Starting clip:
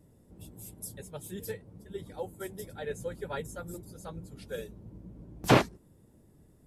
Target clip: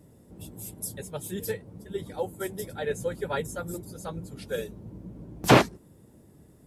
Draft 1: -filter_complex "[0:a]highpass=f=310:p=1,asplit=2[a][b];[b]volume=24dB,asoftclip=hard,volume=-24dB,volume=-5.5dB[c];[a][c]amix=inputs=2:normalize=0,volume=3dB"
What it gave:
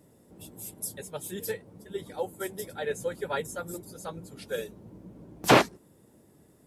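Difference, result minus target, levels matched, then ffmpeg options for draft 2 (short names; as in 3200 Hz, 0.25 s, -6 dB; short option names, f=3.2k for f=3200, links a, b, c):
125 Hz band -5.0 dB
-filter_complex "[0:a]highpass=f=79:p=1,asplit=2[a][b];[b]volume=24dB,asoftclip=hard,volume=-24dB,volume=-5.5dB[c];[a][c]amix=inputs=2:normalize=0,volume=3dB"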